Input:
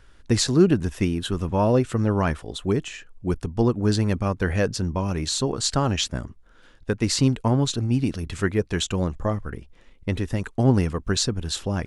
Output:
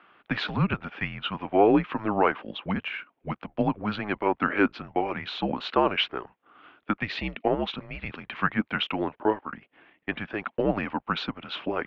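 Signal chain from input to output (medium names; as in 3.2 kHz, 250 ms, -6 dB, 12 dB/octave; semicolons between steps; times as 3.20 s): time-frequency box 7.03–7.47 s, 890–2000 Hz -7 dB; mistuned SSB -210 Hz 510–3200 Hz; trim +5 dB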